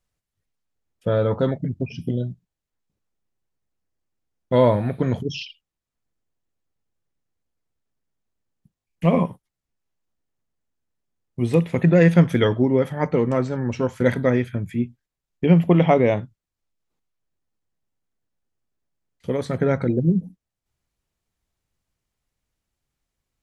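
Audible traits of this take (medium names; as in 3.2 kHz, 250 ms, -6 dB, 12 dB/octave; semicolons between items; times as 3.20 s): noise floor -86 dBFS; spectral tilt -6.5 dB/octave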